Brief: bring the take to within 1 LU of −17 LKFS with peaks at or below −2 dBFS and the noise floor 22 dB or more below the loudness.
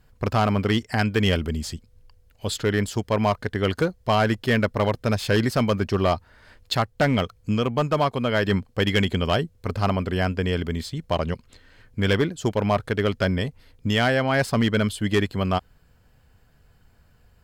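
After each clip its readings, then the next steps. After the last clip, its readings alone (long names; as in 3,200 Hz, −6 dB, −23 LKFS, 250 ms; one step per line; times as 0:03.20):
share of clipped samples 0.8%; peaks flattened at −13.5 dBFS; integrated loudness −23.5 LKFS; sample peak −13.5 dBFS; target loudness −17.0 LKFS
→ clipped peaks rebuilt −13.5 dBFS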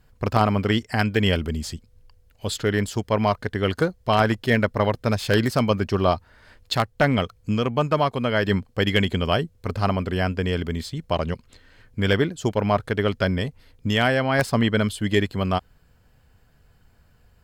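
share of clipped samples 0.0%; integrated loudness −23.0 LKFS; sample peak −4.5 dBFS; target loudness −17.0 LKFS
→ level +6 dB
brickwall limiter −2 dBFS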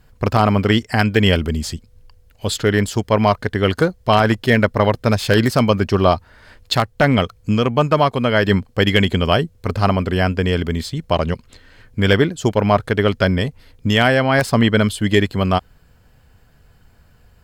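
integrated loudness −17.5 LKFS; sample peak −2.0 dBFS; background noise floor −52 dBFS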